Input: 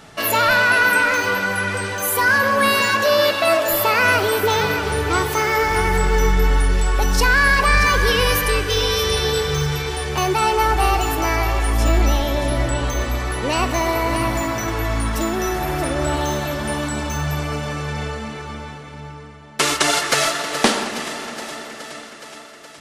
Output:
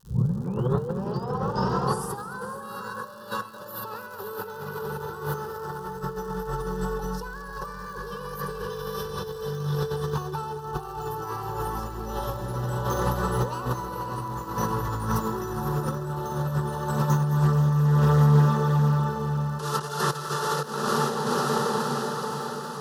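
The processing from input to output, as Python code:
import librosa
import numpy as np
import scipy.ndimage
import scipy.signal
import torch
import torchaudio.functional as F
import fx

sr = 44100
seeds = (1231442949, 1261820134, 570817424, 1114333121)

p1 = fx.tape_start_head(x, sr, length_s=2.62)
p2 = scipy.signal.sosfilt(scipy.signal.butter(4, 71.0, 'highpass', fs=sr, output='sos'), p1)
p3 = fx.peak_eq(p2, sr, hz=3000.0, db=-7.0, octaves=1.7)
p4 = p3 + fx.echo_diffused(p3, sr, ms=531, feedback_pct=51, wet_db=-4.5, dry=0)
p5 = fx.over_compress(p4, sr, threshold_db=-25.0, ratio=-0.5)
p6 = fx.graphic_eq_10(p5, sr, hz=(125, 250, 8000), db=(9, -4, -12))
p7 = fx.dmg_crackle(p6, sr, seeds[0], per_s=140.0, level_db=-37.0)
p8 = fx.fixed_phaser(p7, sr, hz=440.0, stages=8)
p9 = fx.echo_feedback(p8, sr, ms=217, feedback_pct=55, wet_db=-15.5)
y = fx.doppler_dist(p9, sr, depth_ms=0.15)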